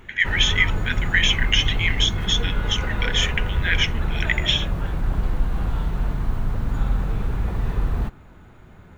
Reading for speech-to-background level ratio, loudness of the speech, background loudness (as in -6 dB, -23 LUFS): 4.5 dB, -22.0 LUFS, -26.5 LUFS